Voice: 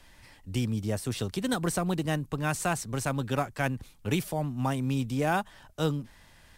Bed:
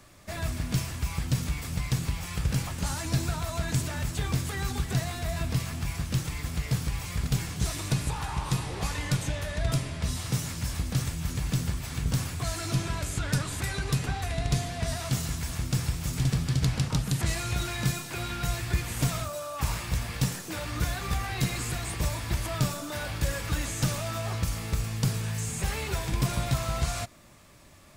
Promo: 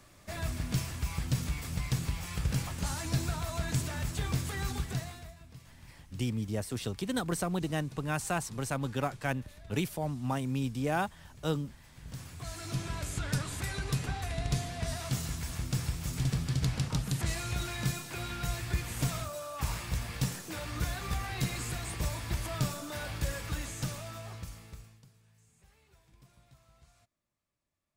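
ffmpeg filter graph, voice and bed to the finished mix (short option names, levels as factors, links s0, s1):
-filter_complex "[0:a]adelay=5650,volume=0.668[s0];[1:a]volume=5.62,afade=t=out:st=4.71:d=0.65:silence=0.105925,afade=t=in:st=11.95:d=1.13:silence=0.11885,afade=t=out:st=23.15:d=1.9:silence=0.0354813[s1];[s0][s1]amix=inputs=2:normalize=0"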